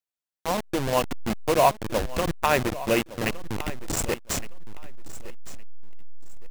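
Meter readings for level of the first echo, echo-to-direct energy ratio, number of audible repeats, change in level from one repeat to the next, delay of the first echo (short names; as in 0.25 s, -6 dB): -16.5 dB, -16.5 dB, 2, -13.0 dB, 1.163 s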